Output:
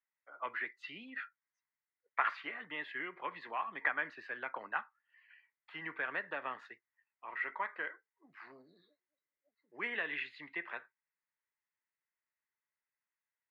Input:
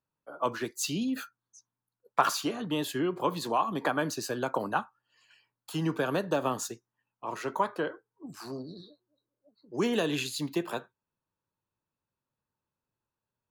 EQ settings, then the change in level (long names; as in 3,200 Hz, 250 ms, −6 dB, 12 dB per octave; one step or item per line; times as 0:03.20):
resonant band-pass 2,000 Hz, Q 9.8
high-frequency loss of the air 410 metres
+15.5 dB